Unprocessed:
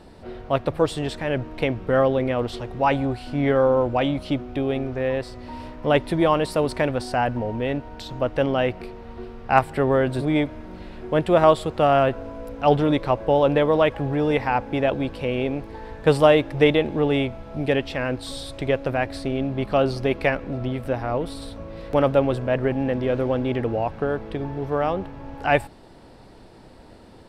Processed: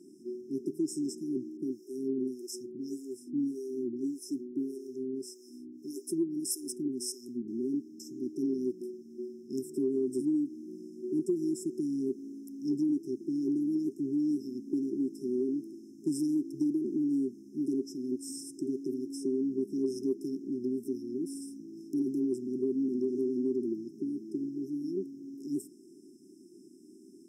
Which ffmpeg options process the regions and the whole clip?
-filter_complex "[0:a]asettb=1/sr,asplit=3[s0][s1][s2];[s0]atrim=end=1.574[s3];[s1]atrim=start=1.57:end=7.48,asetpts=PTS-STARTPTS,afade=t=in:d=0.004:c=qsin,afade=t=out:st=5.906:d=0.004:c=qsin,highshelf=f=3900:g=11,acrossover=split=440[s4][s5];[s4]aeval=exprs='val(0)*(1-1/2+1/2*cos(2*PI*1.7*n/s))':c=same[s6];[s5]aeval=exprs='val(0)*(1-1/2-1/2*cos(2*PI*1.7*n/s))':c=same[s7];[s6][s7]amix=inputs=2:normalize=0[s8];[s2]atrim=start=7.476[s9];[s3][s8]acrossfade=d=0.004:c1=hsin:c2=qsin[s10];[s10][s9]acrossfade=d=0.004:c1=qsin:c2=hsin,afftfilt=real='re*(1-between(b*sr/4096,400,5100))':imag='im*(1-between(b*sr/4096,400,5100))':win_size=4096:overlap=0.75,highpass=f=260:w=0.5412,highpass=f=260:w=1.3066,acompressor=threshold=0.0501:ratio=6"

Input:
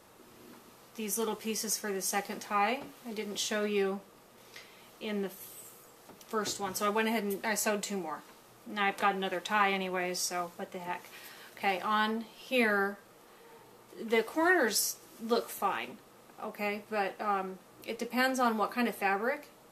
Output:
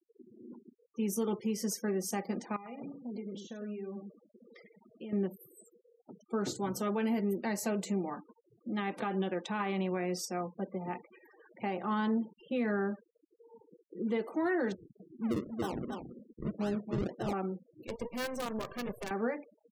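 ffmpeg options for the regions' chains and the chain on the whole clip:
-filter_complex "[0:a]asettb=1/sr,asplit=3[s0][s1][s2];[s0]atrim=end=2.564[s3];[s1]atrim=start=2.56:end=5.13,asetpts=PTS-STARTPTS,afade=t=in:d=0.004:c=qsin,afade=t=out:st=2.566:d=0.004:c=qsin,acompressor=threshold=0.00794:ratio=12:attack=3.2:release=140:knee=1:detection=peak,aecho=1:1:100:0.501,atrim=end_sample=113337[s4];[s2]atrim=start=5.126[s5];[s3][s4]acrossfade=d=0.004:c1=hsin:c2=qsin[s6];[s6][s5]acrossfade=d=0.004:c1=qsin:c2=hsin,asettb=1/sr,asplit=3[s7][s8][s9];[s7]atrim=end=10.254[s10];[s8]atrim=start=10.25:end=14.04,asetpts=PTS-STARTPTS,afade=t=in:d=0.004:c=qsin,afade=t=out:st=3.786:d=0.004:c=qsin,highshelf=f=2200:g=-4.5,acrusher=bits=8:mix=0:aa=0.5[s11];[s9]atrim=start=14.036[s12];[s10][s11]acrossfade=d=0.004:c1=hsin:c2=qsin[s13];[s13][s12]acrossfade=d=0.004:c1=qsin:c2=hsin,asettb=1/sr,asplit=3[s14][s15][s16];[s14]atrim=end=14.724[s17];[s15]atrim=start=14.72:end=17.33,asetpts=PTS-STARTPTS,afade=t=in:d=0.004:c=qsin,afade=t=out:st=2.606:d=0.004:c=qsin,lowpass=1000,acrusher=samples=38:mix=1:aa=0.000001:lfo=1:lforange=38:lforate=1.9,aecho=1:1:278:0.355,atrim=end_sample=115101[s18];[s16]atrim=start=17.326[s19];[s17][s18]acrossfade=d=0.004:c1=hsin:c2=qsin[s20];[s20][s19]acrossfade=d=0.004:c1=qsin:c2=hsin,asettb=1/sr,asplit=3[s21][s22][s23];[s21]atrim=end=17.874[s24];[s22]atrim=start=17.87:end=19.11,asetpts=PTS-STARTPTS,afade=t=in:d=0.004:c=qsin,afade=t=out:st=1.236:d=0.004:c=qsin,acompressor=threshold=0.0282:ratio=2:attack=3.2:release=140:knee=1:detection=peak,aecho=1:1:1.8:0.72,atrim=end_sample=54684,acrusher=bits=5:dc=4:mix=0:aa=0.000001[s25];[s23]atrim=start=19.106[s26];[s24][s25]acrossfade=d=0.004:c1=hsin:c2=qsin[s27];[s27][s26]acrossfade=d=0.004:c1=qsin:c2=hsin,afftfilt=real='re*gte(hypot(re,im),0.00708)':imag='im*gte(hypot(re,im),0.00708)':win_size=1024:overlap=0.75,equalizer=f=200:w=0.42:g=13.5,alimiter=limit=0.126:level=0:latency=1:release=114,volume=0.501"

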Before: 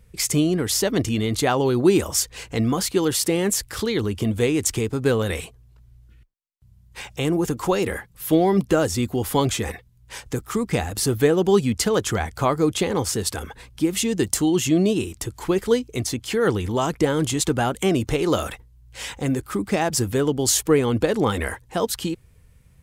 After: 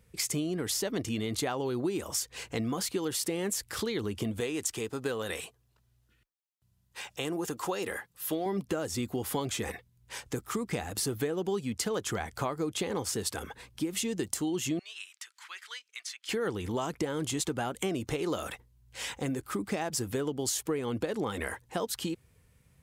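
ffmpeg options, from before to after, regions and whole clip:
-filter_complex "[0:a]asettb=1/sr,asplit=3[s0][s1][s2];[s0]atrim=end=4.404[s3];[s1]atrim=start=4.4:end=8.46,asetpts=PTS-STARTPTS,afade=t=in:d=0.004:c=qsin,afade=t=out:st=4.056:d=0.004:c=qsin,lowshelf=f=320:g=-9.5,bandreject=f=2200:w=15[s4];[s2]atrim=start=8.456[s5];[s3][s4]acrossfade=d=0.004:c1=hsin:c2=qsin[s6];[s6][s5]acrossfade=d=0.004:c1=qsin:c2=hsin,asettb=1/sr,asplit=3[s7][s8][s9];[s7]atrim=end=14.794[s10];[s8]atrim=start=14.79:end=16.29,asetpts=PTS-STARTPTS,afade=t=in:d=0.004:c=qsin,afade=t=out:st=1.496:d=0.004:c=qsin,highpass=f=1500:w=0.5412,highpass=f=1500:w=1.3066,aemphasis=mode=reproduction:type=bsi[s11];[s9]atrim=start=16.286[s12];[s10][s11]acrossfade=d=0.004:c1=hsin:c2=qsin[s13];[s13][s12]acrossfade=d=0.004:c1=qsin:c2=hsin,highpass=f=140:p=1,acompressor=threshold=0.0631:ratio=6,volume=0.596"

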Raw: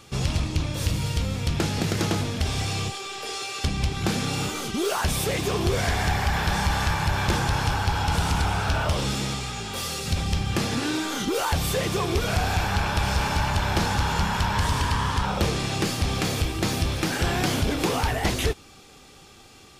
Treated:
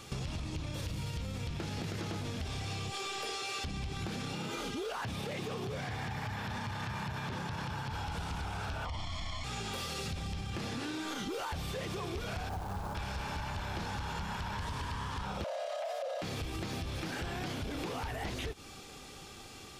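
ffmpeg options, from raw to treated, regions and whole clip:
-filter_complex "[0:a]asettb=1/sr,asplit=3[s0][s1][s2];[s0]atrim=end=4.334[s3];[s1]atrim=start=4.33:end=7.93,asetpts=PTS-STARTPTS,afade=t=in:d=0.004:c=qsin,afade=t=out:st=3.596:d=0.004:c=qsin,acrossover=split=4900[s4][s5];[s5]acompressor=threshold=0.00794:ratio=4:attack=1:release=60[s6];[s4][s6]amix=inputs=2:normalize=0,afreqshift=38[s7];[s2]atrim=start=7.926[s8];[s3][s7]acrossfade=d=0.004:c1=hsin:c2=qsin[s9];[s9][s8]acrossfade=d=0.004:c1=qsin:c2=hsin,asettb=1/sr,asplit=3[s10][s11][s12];[s10]atrim=end=8.854[s13];[s11]atrim=start=8.85:end=9.44,asetpts=PTS-STARTPTS,afade=t=in:d=0.004:c=qsin,afade=t=out:st=0.586:d=0.004:c=qsin,lowpass=6300,aecho=1:1:0.9:1,atrim=end_sample=26019,afreqshift=-150[s14];[s12]atrim=start=9.436[s15];[s13][s14]acrossfade=d=0.004:c1=hsin:c2=qsin[s16];[s16][s15]acrossfade=d=0.004:c1=qsin:c2=hsin,asettb=1/sr,asplit=3[s17][s18][s19];[s17]atrim=end=12.494[s20];[s18]atrim=start=12.49:end=12.95,asetpts=PTS-STARTPTS,afade=t=in:d=0.004:c=qsin,afade=t=out:st=0.456:d=0.004:c=qsin,lowpass=f=1200:w=0.5412,lowpass=f=1200:w=1.3066,acrusher=bits=3:mode=log:mix=0:aa=0.000001[s21];[s19]atrim=start=12.946[s22];[s20][s21]acrossfade=d=0.004:c1=hsin:c2=qsin[s23];[s23][s22]acrossfade=d=0.004:c1=qsin:c2=hsin,asettb=1/sr,asplit=3[s24][s25][s26];[s24]atrim=end=15.444[s27];[s25]atrim=start=15.44:end=16.22,asetpts=PTS-STARTPTS,afade=t=in:d=0.004:c=qsin,afade=t=out:st=0.776:d=0.004:c=qsin,acrossover=split=3100[s28][s29];[s29]acompressor=threshold=0.0141:ratio=4:attack=1:release=60[s30];[s28][s30]amix=inputs=2:normalize=0,lowshelf=f=290:t=q:w=3:g=6.5,afreqshift=470[s31];[s26]atrim=start=16.216[s32];[s27][s31]acrossfade=d=0.004:c1=hsin:c2=qsin[s33];[s33][s32]acrossfade=d=0.004:c1=qsin:c2=hsin,acrossover=split=5200[s34][s35];[s35]acompressor=threshold=0.00891:ratio=4:attack=1:release=60[s36];[s34][s36]amix=inputs=2:normalize=0,alimiter=level_in=1.06:limit=0.0631:level=0:latency=1:release=91,volume=0.944,acompressor=threshold=0.0178:ratio=6"

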